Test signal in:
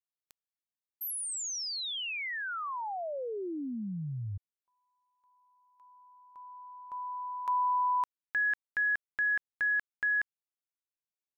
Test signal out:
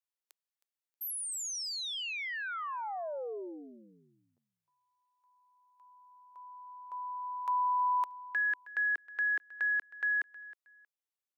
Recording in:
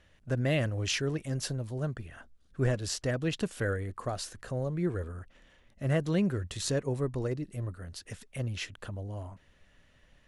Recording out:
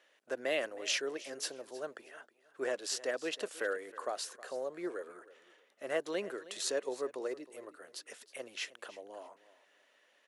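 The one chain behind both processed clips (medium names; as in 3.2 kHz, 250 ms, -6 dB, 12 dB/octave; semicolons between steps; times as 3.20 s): high-pass 380 Hz 24 dB/octave; on a send: feedback delay 316 ms, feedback 23%, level -18 dB; on the sum: trim -1.5 dB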